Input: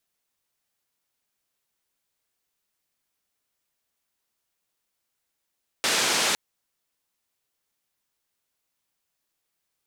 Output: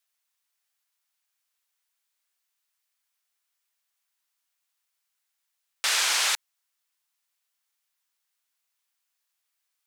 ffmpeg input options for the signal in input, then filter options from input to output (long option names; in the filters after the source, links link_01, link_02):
-f lavfi -i "anoisesrc=color=white:duration=0.51:sample_rate=44100:seed=1,highpass=frequency=210,lowpass=frequency=6400,volume=-13.4dB"
-af "highpass=1000"